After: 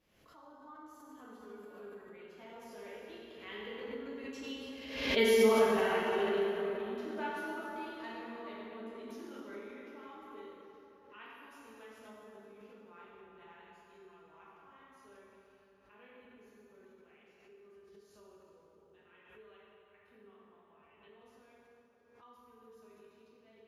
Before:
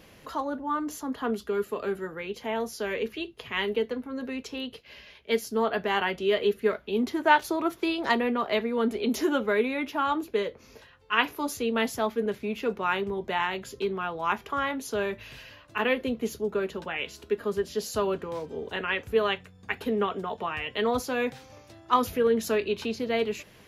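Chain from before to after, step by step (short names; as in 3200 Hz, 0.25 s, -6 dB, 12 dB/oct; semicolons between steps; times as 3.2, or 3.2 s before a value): Doppler pass-by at 5.14, 9 m/s, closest 1.8 m; plate-style reverb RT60 3.4 s, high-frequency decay 0.6×, DRR -7.5 dB; backwards sustainer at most 62 dB/s; gain -4 dB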